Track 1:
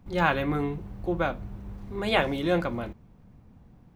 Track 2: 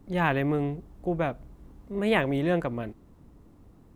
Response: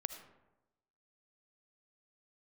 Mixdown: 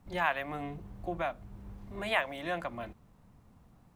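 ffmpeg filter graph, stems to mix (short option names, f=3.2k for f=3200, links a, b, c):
-filter_complex "[0:a]volume=-7dB[a];[1:a]highpass=f=640:w=0.5412,highpass=f=640:w=1.3066,volume=-1,volume=-2.5dB,asplit=2[b][c];[c]apad=whole_len=174261[d];[a][d]sidechaincompress=threshold=-39dB:ratio=8:attack=29:release=439[e];[e][b]amix=inputs=2:normalize=0"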